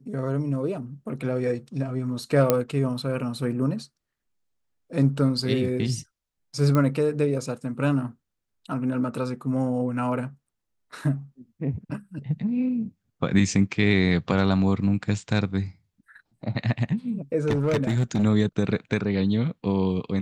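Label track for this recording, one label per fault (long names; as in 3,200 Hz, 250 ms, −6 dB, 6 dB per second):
2.500000	2.500000	click −5 dBFS
6.750000	6.750000	click −12 dBFS
17.470000	18.240000	clipping −18 dBFS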